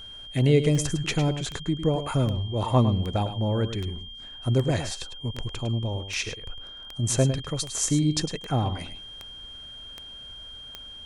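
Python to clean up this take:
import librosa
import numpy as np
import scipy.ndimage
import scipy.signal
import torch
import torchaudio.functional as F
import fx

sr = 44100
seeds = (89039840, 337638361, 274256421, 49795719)

y = fx.fix_declick_ar(x, sr, threshold=10.0)
y = fx.notch(y, sr, hz=3200.0, q=30.0)
y = fx.fix_echo_inverse(y, sr, delay_ms=105, level_db=-10.5)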